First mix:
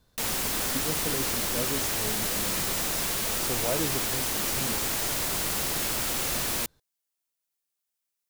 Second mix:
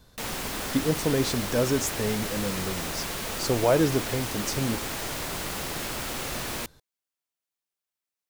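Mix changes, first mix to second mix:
speech +9.5 dB; background: add treble shelf 4.8 kHz -8.5 dB

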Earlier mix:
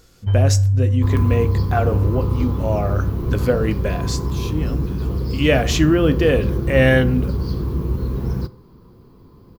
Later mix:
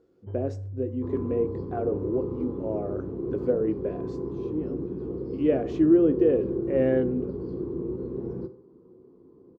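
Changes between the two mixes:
first sound: add distance through air 260 m; second sound: send +7.0 dB; master: add band-pass filter 370 Hz, Q 2.9

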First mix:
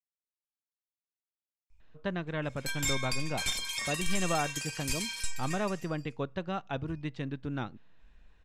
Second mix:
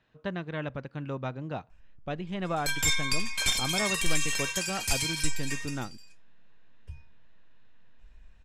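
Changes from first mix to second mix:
speech: entry -1.80 s; background +5.5 dB

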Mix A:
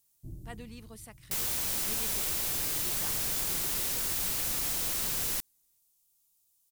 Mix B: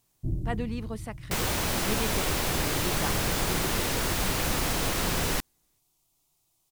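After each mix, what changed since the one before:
master: remove pre-emphasis filter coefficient 0.8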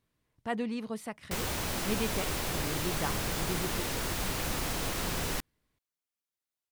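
first sound: muted; second sound -5.5 dB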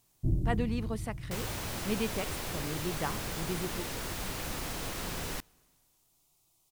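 first sound: unmuted; second sound -4.5 dB; reverb: on, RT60 2.1 s

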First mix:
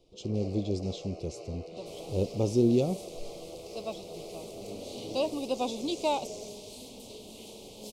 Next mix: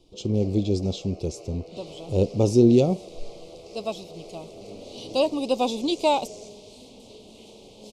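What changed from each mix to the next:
speech +7.5 dB; second sound: add distance through air 58 m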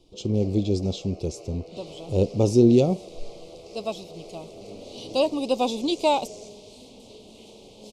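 no change

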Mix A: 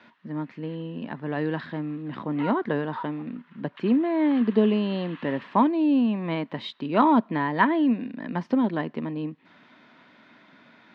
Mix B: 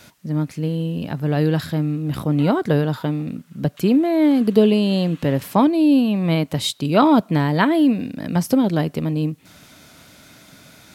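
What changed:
speech +8.5 dB; master: remove cabinet simulation 210–3500 Hz, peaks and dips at 230 Hz +8 dB, 360 Hz +3 dB, 990 Hz +10 dB, 1.8 kHz +8 dB

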